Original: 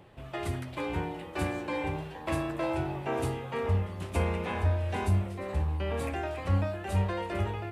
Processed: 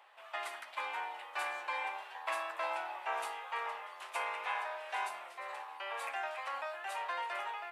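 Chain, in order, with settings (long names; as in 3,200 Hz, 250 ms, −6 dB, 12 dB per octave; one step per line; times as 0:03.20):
high-pass filter 830 Hz 24 dB per octave
high-shelf EQ 3,400 Hz −8 dB
level +2.5 dB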